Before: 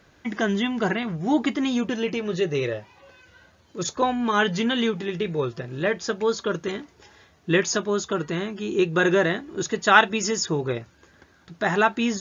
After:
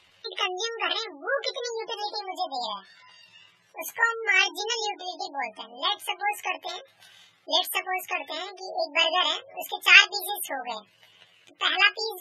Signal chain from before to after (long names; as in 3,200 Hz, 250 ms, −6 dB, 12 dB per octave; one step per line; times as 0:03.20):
pitch shift by two crossfaded delay taps +10.5 semitones
gate on every frequency bin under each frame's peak −25 dB strong
octave-band graphic EQ 250/2,000/4,000 Hz −11/+9/+8 dB
level −6 dB